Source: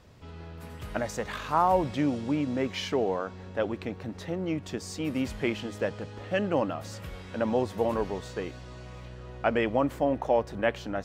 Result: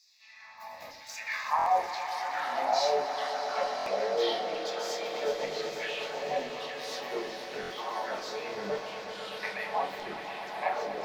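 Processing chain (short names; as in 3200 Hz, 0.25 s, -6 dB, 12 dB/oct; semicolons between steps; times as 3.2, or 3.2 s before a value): compressor 4:1, threshold -32 dBFS, peak gain reduction 11.5 dB; harmoniser +5 st -4 dB; fixed phaser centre 2100 Hz, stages 8; LFO high-pass saw down 1.1 Hz 430–5300 Hz; echoes that change speed 0.739 s, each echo -4 st, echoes 2; swelling echo 0.124 s, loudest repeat 5, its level -13 dB; shoebox room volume 350 m³, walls furnished, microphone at 1.5 m; stuck buffer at 1.57/3.77/7.61, samples 1024, times 3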